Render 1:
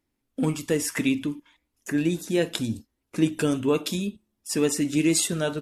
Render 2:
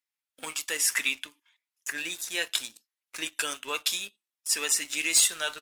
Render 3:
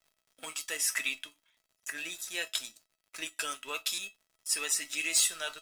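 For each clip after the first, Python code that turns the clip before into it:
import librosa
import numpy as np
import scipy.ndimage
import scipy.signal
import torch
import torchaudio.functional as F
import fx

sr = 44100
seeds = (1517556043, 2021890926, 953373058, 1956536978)

y1 = scipy.signal.sosfilt(scipy.signal.butter(2, 1500.0, 'highpass', fs=sr, output='sos'), x)
y1 = fx.leveller(y1, sr, passes=2)
y1 = F.gain(torch.from_numpy(y1), -2.0).numpy()
y2 = fx.dmg_crackle(y1, sr, seeds[0], per_s=90.0, level_db=-49.0)
y2 = fx.comb_fb(y2, sr, f0_hz=650.0, decay_s=0.16, harmonics='all', damping=0.0, mix_pct=80)
y2 = fx.buffer_glitch(y2, sr, at_s=(3.94,), block=256, repeats=6)
y2 = F.gain(torch.from_numpy(y2), 6.5).numpy()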